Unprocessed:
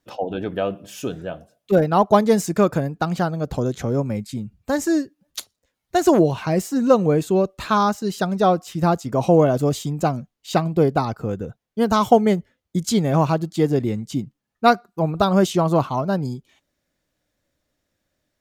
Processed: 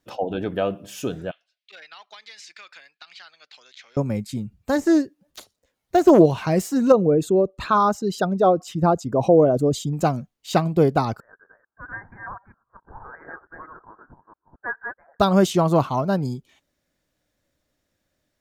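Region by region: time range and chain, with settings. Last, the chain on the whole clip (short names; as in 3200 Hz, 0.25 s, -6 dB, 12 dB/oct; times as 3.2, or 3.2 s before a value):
1.31–3.97 Chebyshev band-pass 2100–4500 Hz + compressor 10:1, threshold -38 dBFS
4.76–6.26 de-esser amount 75% + bell 500 Hz +4 dB 1.6 oct + Doppler distortion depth 0.11 ms
6.92–9.93 formant sharpening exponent 1.5 + de-esser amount 35%
11.2–15.2 reverse delay 0.224 s, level -3.5 dB + Chebyshev high-pass 1500 Hz, order 6 + inverted band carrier 3100 Hz
whole clip: dry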